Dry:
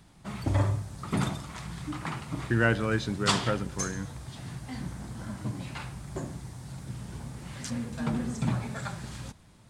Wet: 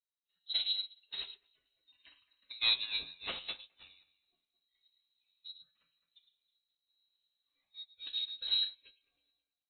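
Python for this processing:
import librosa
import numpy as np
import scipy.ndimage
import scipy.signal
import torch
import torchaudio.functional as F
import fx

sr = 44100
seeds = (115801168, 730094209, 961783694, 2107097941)

p1 = fx.cvsd(x, sr, bps=32000)
p2 = fx.noise_reduce_blind(p1, sr, reduce_db=14)
p3 = fx.step_gate(p2, sr, bpm=155, pattern='xx.x.xxxxxx', floor_db=-12.0, edge_ms=4.5)
p4 = 10.0 ** (-25.0 / 20.0) * np.tanh(p3 / 10.0 ** (-25.0 / 20.0))
p5 = p3 + (p4 * 10.0 ** (-7.0 / 20.0))
p6 = fx.comb_fb(p5, sr, f0_hz=120.0, decay_s=0.5, harmonics='all', damping=0.0, mix_pct=70)
p7 = p6 + fx.echo_alternate(p6, sr, ms=106, hz=1400.0, feedback_pct=55, wet_db=-4.0, dry=0)
p8 = fx.freq_invert(p7, sr, carrier_hz=4000)
p9 = fx.upward_expand(p8, sr, threshold_db=-46.0, expansion=2.5)
y = p9 * 10.0 ** (1.0 / 20.0)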